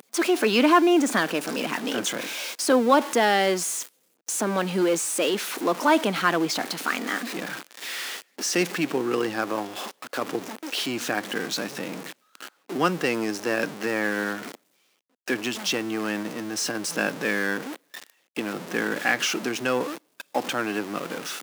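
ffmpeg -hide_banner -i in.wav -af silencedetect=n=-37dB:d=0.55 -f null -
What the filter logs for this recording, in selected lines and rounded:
silence_start: 14.55
silence_end: 15.28 | silence_duration: 0.73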